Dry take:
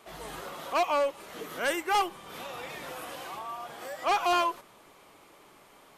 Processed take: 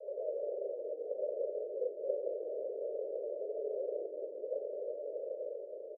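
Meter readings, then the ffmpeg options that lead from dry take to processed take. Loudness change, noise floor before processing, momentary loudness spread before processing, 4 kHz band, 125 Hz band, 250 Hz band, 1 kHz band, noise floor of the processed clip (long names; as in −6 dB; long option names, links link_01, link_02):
−8.5 dB, −57 dBFS, 14 LU, below −40 dB, below −40 dB, −13.5 dB, below −30 dB, −47 dBFS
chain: -filter_complex "[0:a]aeval=exprs='val(0)+0.5*0.00447*sgn(val(0))':channel_layout=same,dynaudnorm=framelen=200:gausssize=7:maxgain=5dB,asplit=2[link_01][link_02];[link_02]alimiter=level_in=3dB:limit=-24dB:level=0:latency=1:release=44,volume=-3dB,volume=-1dB[link_03];[link_01][link_03]amix=inputs=2:normalize=0,acontrast=64,aeval=exprs='(mod(10.6*val(0)+1,2)-1)/10.6':channel_layout=same,asuperpass=centerf=300:order=12:qfactor=1.4,asplit=2[link_04][link_05];[link_05]asplit=4[link_06][link_07][link_08][link_09];[link_06]adelay=173,afreqshift=-37,volume=-9.5dB[link_10];[link_07]adelay=346,afreqshift=-74,volume=-17.7dB[link_11];[link_08]adelay=519,afreqshift=-111,volume=-25.9dB[link_12];[link_09]adelay=692,afreqshift=-148,volume=-34dB[link_13];[link_10][link_11][link_12][link_13]amix=inputs=4:normalize=0[link_14];[link_04][link_14]amix=inputs=2:normalize=0,afreqshift=190"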